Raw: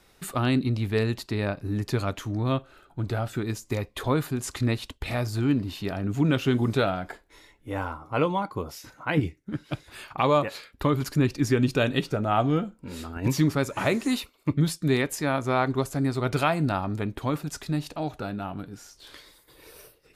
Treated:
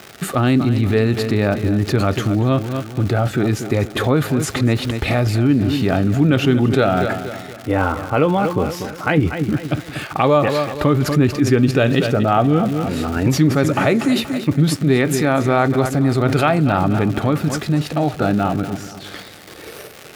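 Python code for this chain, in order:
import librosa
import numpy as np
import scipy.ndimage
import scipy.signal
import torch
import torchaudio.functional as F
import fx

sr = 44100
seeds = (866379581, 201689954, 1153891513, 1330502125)

p1 = x + fx.echo_feedback(x, sr, ms=238, feedback_pct=42, wet_db=-13.5, dry=0)
p2 = fx.dmg_crackle(p1, sr, seeds[0], per_s=270.0, level_db=-34.0)
p3 = scipy.signal.sosfilt(scipy.signal.butter(2, 82.0, 'highpass', fs=sr, output='sos'), p2)
p4 = fx.high_shelf(p3, sr, hz=3300.0, db=-9.5)
p5 = fx.notch(p4, sr, hz=990.0, q=5.9)
p6 = fx.over_compress(p5, sr, threshold_db=-32.0, ratio=-1.0)
p7 = p5 + F.gain(torch.from_numpy(p6), 0.0).numpy()
y = F.gain(torch.from_numpy(p7), 7.0).numpy()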